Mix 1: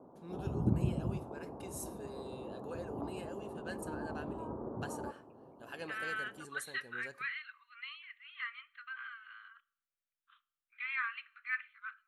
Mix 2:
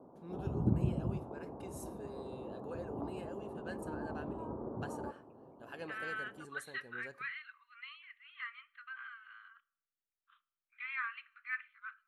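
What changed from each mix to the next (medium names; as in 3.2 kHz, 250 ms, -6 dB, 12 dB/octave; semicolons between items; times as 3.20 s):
master: add treble shelf 2.6 kHz -8 dB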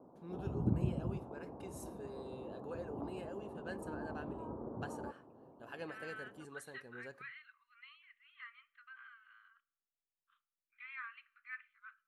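first voice: add treble shelf 8.5 kHz -3.5 dB; second voice -8.0 dB; background: send -11.5 dB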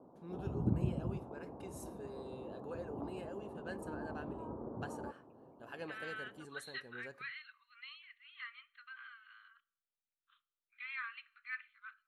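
second voice: remove distance through air 450 m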